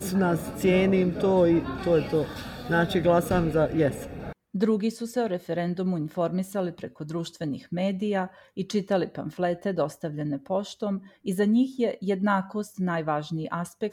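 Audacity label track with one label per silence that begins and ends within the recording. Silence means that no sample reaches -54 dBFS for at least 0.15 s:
4.330000	4.540000	silence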